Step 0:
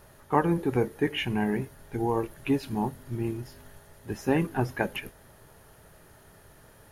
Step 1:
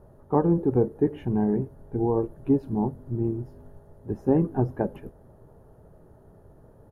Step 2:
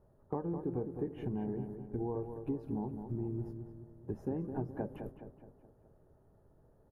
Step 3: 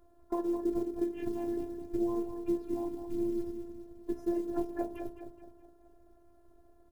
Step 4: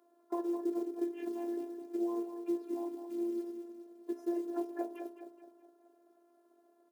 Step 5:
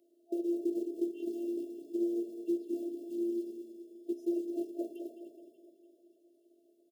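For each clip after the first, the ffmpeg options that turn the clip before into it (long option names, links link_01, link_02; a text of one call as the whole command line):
ffmpeg -i in.wav -af "firequalizer=gain_entry='entry(450,0);entry(2200,-27);entry(12000,-23)':delay=0.05:min_phase=1,volume=4dB" out.wav
ffmpeg -i in.wav -filter_complex "[0:a]agate=range=-9dB:threshold=-40dB:ratio=16:detection=peak,acompressor=threshold=-29dB:ratio=6,asplit=2[link_01][link_02];[link_02]adelay=210,lowpass=frequency=2400:poles=1,volume=-7.5dB,asplit=2[link_03][link_04];[link_04]adelay=210,lowpass=frequency=2400:poles=1,volume=0.5,asplit=2[link_05][link_06];[link_06]adelay=210,lowpass=frequency=2400:poles=1,volume=0.5,asplit=2[link_07][link_08];[link_08]adelay=210,lowpass=frequency=2400:poles=1,volume=0.5,asplit=2[link_09][link_10];[link_10]adelay=210,lowpass=frequency=2400:poles=1,volume=0.5,asplit=2[link_11][link_12];[link_12]adelay=210,lowpass=frequency=2400:poles=1,volume=0.5[link_13];[link_03][link_05][link_07][link_09][link_11][link_13]amix=inputs=6:normalize=0[link_14];[link_01][link_14]amix=inputs=2:normalize=0,volume=-5dB" out.wav
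ffmpeg -i in.wav -af "acrusher=bits=8:mode=log:mix=0:aa=0.000001,bandreject=frequency=72.19:width_type=h:width=4,bandreject=frequency=144.38:width_type=h:width=4,bandreject=frequency=216.57:width_type=h:width=4,bandreject=frequency=288.76:width_type=h:width=4,bandreject=frequency=360.95:width_type=h:width=4,bandreject=frequency=433.14:width_type=h:width=4,bandreject=frequency=505.33:width_type=h:width=4,bandreject=frequency=577.52:width_type=h:width=4,bandreject=frequency=649.71:width_type=h:width=4,bandreject=frequency=721.9:width_type=h:width=4,bandreject=frequency=794.09:width_type=h:width=4,bandreject=frequency=866.28:width_type=h:width=4,bandreject=frequency=938.47:width_type=h:width=4,bandreject=frequency=1010.66:width_type=h:width=4,bandreject=frequency=1082.85:width_type=h:width=4,afftfilt=real='hypot(re,im)*cos(PI*b)':imag='0':win_size=512:overlap=0.75,volume=8.5dB" out.wav
ffmpeg -i in.wav -af "highpass=frequency=280:width=0.5412,highpass=frequency=280:width=1.3066,volume=-2dB" out.wav
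ffmpeg -i in.wav -af "lowshelf=frequency=350:gain=4.5,afftfilt=real='re*(1-between(b*sr/4096,680,2600))':imag='im*(1-between(b*sr/4096,680,2600))':win_size=4096:overlap=0.75,aecho=1:1:292|584|876|1168|1460:0.211|0.11|0.0571|0.0297|0.0155" out.wav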